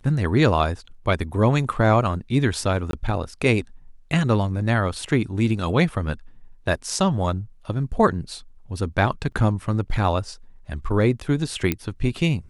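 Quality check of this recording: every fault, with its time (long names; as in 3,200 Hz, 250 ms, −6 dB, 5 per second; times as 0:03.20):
0:02.91–0:02.93: drop-out 22 ms
0:09.32: drop-out 3.9 ms
0:11.72: click −8 dBFS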